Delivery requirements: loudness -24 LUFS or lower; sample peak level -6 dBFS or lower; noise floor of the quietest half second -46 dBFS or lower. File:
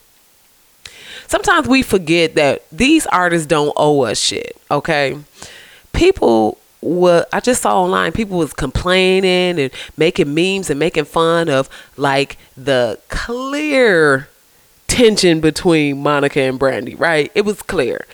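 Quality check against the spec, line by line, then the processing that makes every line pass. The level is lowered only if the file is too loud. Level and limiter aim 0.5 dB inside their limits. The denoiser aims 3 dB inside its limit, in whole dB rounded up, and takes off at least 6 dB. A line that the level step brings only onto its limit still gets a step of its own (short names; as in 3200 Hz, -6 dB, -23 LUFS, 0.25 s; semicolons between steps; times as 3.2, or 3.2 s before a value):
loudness -14.5 LUFS: fail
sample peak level -2.0 dBFS: fail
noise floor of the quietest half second -51 dBFS: OK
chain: gain -10 dB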